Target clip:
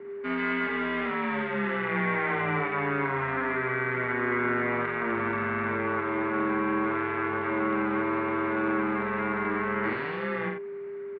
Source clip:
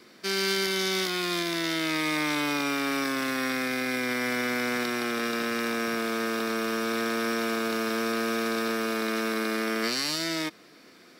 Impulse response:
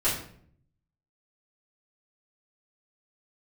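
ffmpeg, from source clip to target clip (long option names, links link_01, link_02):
-filter_complex "[0:a]asplit=2[link_01][link_02];[link_02]asetrate=35002,aresample=44100,atempo=1.25992,volume=-9dB[link_03];[link_01][link_03]amix=inputs=2:normalize=0,aeval=exprs='val(0)+0.0112*sin(2*PI*530*n/s)':channel_layout=same,highpass=frequency=340:width_type=q:width=0.5412,highpass=frequency=340:width_type=q:width=1.307,lowpass=frequency=2400:width_type=q:width=0.5176,lowpass=frequency=2400:width_type=q:width=0.7071,lowpass=frequency=2400:width_type=q:width=1.932,afreqshift=-130,aecho=1:1:49.56|87.46:0.562|0.447"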